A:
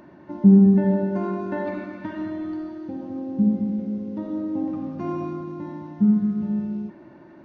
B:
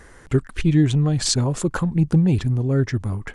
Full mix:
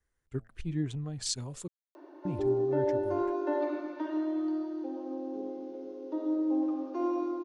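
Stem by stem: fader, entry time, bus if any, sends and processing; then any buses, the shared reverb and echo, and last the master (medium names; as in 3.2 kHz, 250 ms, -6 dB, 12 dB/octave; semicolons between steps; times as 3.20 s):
-1.0 dB, 1.95 s, no send, steep high-pass 280 Hz 96 dB/octave; peaking EQ 2 kHz -9.5 dB 1 oct
-17.5 dB, 0.00 s, muted 1.68–2.25 s, no send, de-hum 110.8 Hz, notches 7; three bands expanded up and down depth 70%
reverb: none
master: none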